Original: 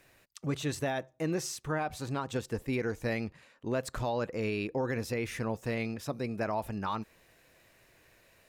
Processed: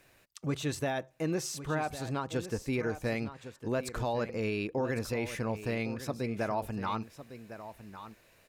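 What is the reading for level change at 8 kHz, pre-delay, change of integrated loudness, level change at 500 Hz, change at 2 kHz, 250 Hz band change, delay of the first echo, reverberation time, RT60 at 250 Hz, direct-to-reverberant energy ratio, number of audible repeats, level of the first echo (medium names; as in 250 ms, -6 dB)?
0.0 dB, no reverb, 0.0 dB, +0.5 dB, 0.0 dB, +0.5 dB, 1105 ms, no reverb, no reverb, no reverb, 1, -12.5 dB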